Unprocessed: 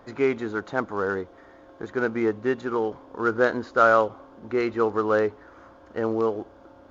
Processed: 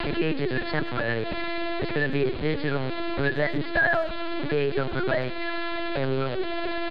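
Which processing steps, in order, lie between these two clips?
converter with a step at zero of −23.5 dBFS
Butterworth high-pass 210 Hz 36 dB per octave
parametric band 740 Hz −9.5 dB 1.5 octaves
comb filter 3.5 ms, depth 84%
linear-prediction vocoder at 8 kHz pitch kept
reversed playback
upward compression, threshold −25 dBFS
reversed playback
pitch shifter +3 semitones
far-end echo of a speakerphone 100 ms, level −18 dB
multiband upward and downward compressor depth 70%
level −1.5 dB

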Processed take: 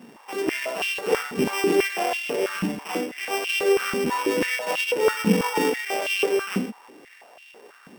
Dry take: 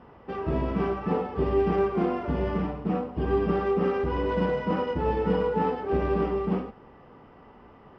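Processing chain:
samples sorted by size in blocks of 16 samples
high-pass on a step sequencer 6.1 Hz 220–2,800 Hz

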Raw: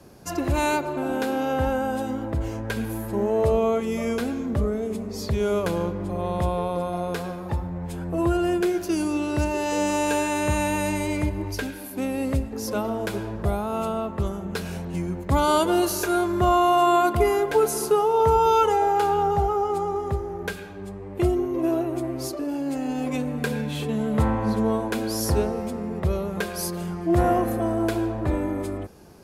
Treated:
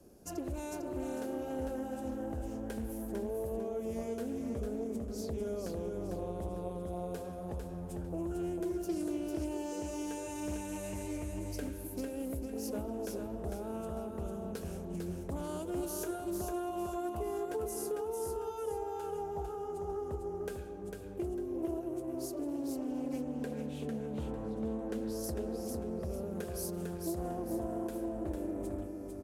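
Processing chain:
0:22.68–0:25.24: high-shelf EQ 7,300 Hz −10.5 dB
downward compressor 6 to 1, threshold −26 dBFS, peak gain reduction 11.5 dB
graphic EQ with 10 bands 125 Hz −11 dB, 1,000 Hz −10 dB, 2,000 Hz −10 dB, 4,000 Hz −9 dB
repeating echo 450 ms, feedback 31%, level −4.5 dB
highs frequency-modulated by the lows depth 0.25 ms
level −5.5 dB

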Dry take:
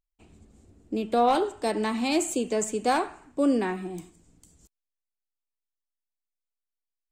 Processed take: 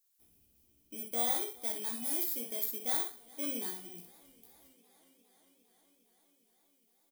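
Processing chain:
samples in bit-reversed order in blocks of 16 samples
pitch vibrato 1.5 Hz 6 cents
bit-depth reduction 12 bits, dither triangular
first-order pre-emphasis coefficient 0.8
ambience of single reflections 17 ms −4.5 dB, 62 ms −6 dB
feedback echo with a swinging delay time 407 ms, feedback 78%, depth 54 cents, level −23.5 dB
level −6.5 dB

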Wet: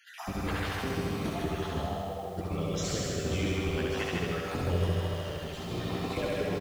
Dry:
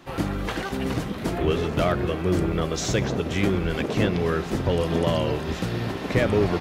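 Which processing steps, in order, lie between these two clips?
time-frequency cells dropped at random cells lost 46%
downward compressor, threshold −27 dBFS, peak gain reduction 9.5 dB
0:01.78–0:02.38: transistor ladder low-pass 820 Hz, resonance 80%
0:04.90–0:05.71: tube saturation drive 33 dB, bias 0.6
flutter between parallel walls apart 11.6 metres, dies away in 1.2 s
flanger 0.43 Hz, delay 9.7 ms, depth 3.7 ms, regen −50%
ambience of single reflections 66 ms −10 dB, 78 ms −9 dB
feedback echo at a low word length 156 ms, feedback 55%, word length 9 bits, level −3 dB

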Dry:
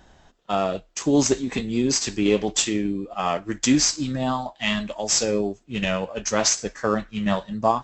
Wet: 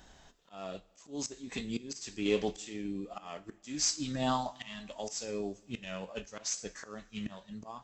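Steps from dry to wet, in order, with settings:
high-shelf EQ 2,800 Hz +8.5 dB
volume swells 714 ms
coupled-rooms reverb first 0.27 s, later 2.9 s, from −21 dB, DRR 12.5 dB
level −6 dB

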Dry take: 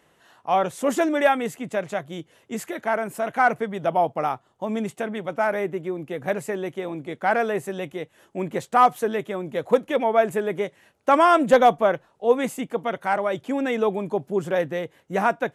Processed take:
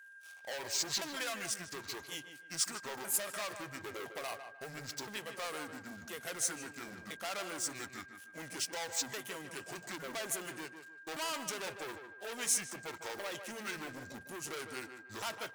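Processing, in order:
pitch shifter swept by a sawtooth −10 semitones, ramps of 1,015 ms
brickwall limiter −14.5 dBFS, peak gain reduction 7.5 dB
leveller curve on the samples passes 3
downward compressor, threshold −20 dBFS, peak gain reduction 4 dB
steady tone 1,600 Hz −40 dBFS
first-order pre-emphasis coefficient 0.97
on a send: tape delay 153 ms, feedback 32%, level −7 dB, low-pass 1,900 Hz

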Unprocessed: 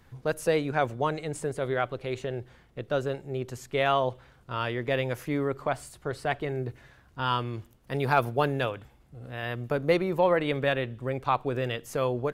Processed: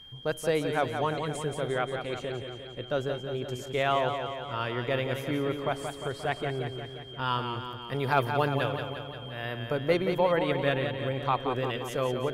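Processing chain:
steady tone 3,200 Hz −45 dBFS
feedback echo with a swinging delay time 176 ms, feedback 62%, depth 65 cents, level −7 dB
level −2 dB

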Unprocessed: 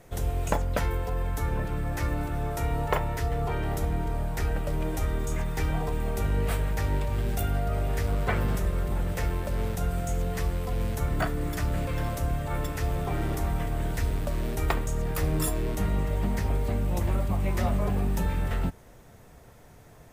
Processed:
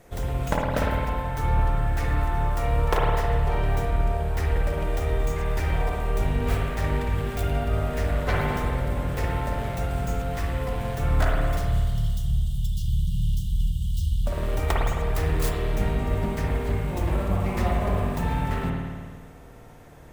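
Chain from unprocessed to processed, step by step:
stylus tracing distortion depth 0.33 ms
time-frequency box erased 0:11.58–0:14.26, 210–2,800 Hz
spring reverb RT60 1.7 s, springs 53 ms, chirp 65 ms, DRR −2.5 dB

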